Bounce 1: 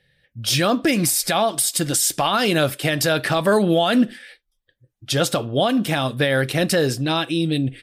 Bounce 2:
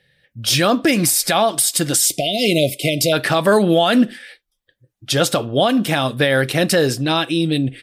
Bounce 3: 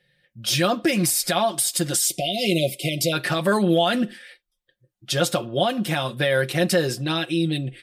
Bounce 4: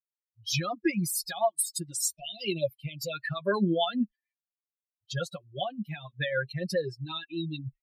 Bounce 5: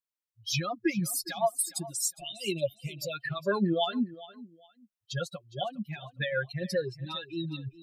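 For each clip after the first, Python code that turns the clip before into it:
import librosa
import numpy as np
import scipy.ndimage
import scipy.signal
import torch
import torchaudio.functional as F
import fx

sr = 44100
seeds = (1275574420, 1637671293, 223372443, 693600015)

y1 = fx.spec_erase(x, sr, start_s=2.06, length_s=1.07, low_hz=730.0, high_hz=2000.0)
y1 = fx.low_shelf(y1, sr, hz=71.0, db=-9.5)
y1 = y1 * librosa.db_to_amplitude(3.5)
y2 = y1 + 0.65 * np.pad(y1, (int(5.6 * sr / 1000.0), 0))[:len(y1)]
y2 = y2 * librosa.db_to_amplitude(-7.0)
y3 = fx.bin_expand(y2, sr, power=3.0)
y3 = fx.rotary(y3, sr, hz=6.7)
y4 = fx.echo_feedback(y3, sr, ms=410, feedback_pct=24, wet_db=-18)
y4 = y4 * librosa.db_to_amplitude(-1.0)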